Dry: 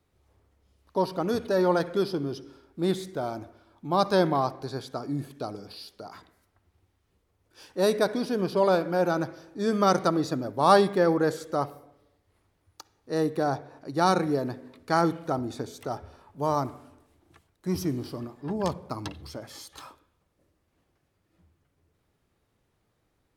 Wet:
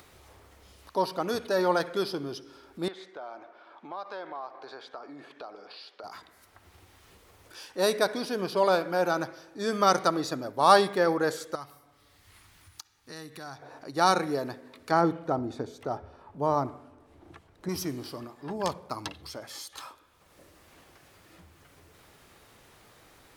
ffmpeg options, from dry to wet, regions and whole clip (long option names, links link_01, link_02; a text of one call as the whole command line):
ffmpeg -i in.wav -filter_complex "[0:a]asettb=1/sr,asplit=3[link_01][link_02][link_03];[link_01]atrim=end=2.884[link_04];[link_02]atrim=start=2.88:end=6.04,asetpts=PTS-STARTPTS,afade=type=in:duration=0.004:curve=qsin,afade=type=out:start_time=3.156:duration=0.004:curve=qsin,highpass=460,lowpass=2600,acompressor=threshold=-38dB:ratio=3:attack=3.2:release=140:knee=1:detection=peak[link_05];[link_03]atrim=start=6.036[link_06];[link_04][link_05]acrossfade=duration=0.004:curve1=hsin:curve2=qsin[link_07];[link_07][link_06]acrossfade=duration=0.004:curve1=qsin:curve2=hsin,asettb=1/sr,asplit=3[link_08][link_09][link_10];[link_08]atrim=end=11.554[link_11];[link_09]atrim=start=11.55:end=13.62,asetpts=PTS-STARTPTS,afade=type=in:duration=0.004:curve=qsin,afade=type=out:start_time=2.066:duration=0.004:curve=qsin,equalizer=frequency=520:width_type=o:width=1.8:gain=-13.5,acompressor=threshold=-41dB:ratio=2:attack=3.2:release=140:knee=1:detection=peak[link_12];[link_10]atrim=start=13.616[link_13];[link_11][link_12]acrossfade=duration=0.004:curve1=hsin:curve2=qsin[link_14];[link_14][link_13]acrossfade=duration=0.004:curve1=qsin:curve2=hsin,asettb=1/sr,asplit=3[link_15][link_16][link_17];[link_15]atrim=end=14.914[link_18];[link_16]atrim=start=14.91:end=17.69,asetpts=PTS-STARTPTS,afade=type=in:duration=0.004:curve=qsin,afade=type=out:start_time=2.776:duration=0.004:curve=qsin,lowpass=frequency=3800:poles=1,tiltshelf=frequency=860:gain=5.5[link_19];[link_17]atrim=start=17.686[link_20];[link_18][link_19]acrossfade=duration=0.004:curve1=hsin:curve2=qsin[link_21];[link_21][link_20]acrossfade=duration=0.004:curve1=qsin:curve2=hsin,lowshelf=frequency=440:gain=-11.5,acompressor=mode=upward:threshold=-43dB:ratio=2.5,volume=3dB" out.wav